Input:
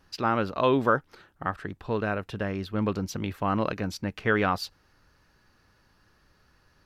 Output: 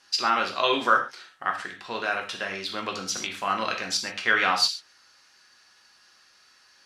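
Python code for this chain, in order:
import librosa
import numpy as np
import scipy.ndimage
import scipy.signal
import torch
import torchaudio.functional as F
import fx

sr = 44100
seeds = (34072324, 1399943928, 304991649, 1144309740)

y = fx.weighting(x, sr, curve='ITU-R 468')
y = fx.rev_gated(y, sr, seeds[0], gate_ms=160, shape='falling', drr_db=1.0)
y = fx.band_squash(y, sr, depth_pct=40, at=(2.69, 3.17))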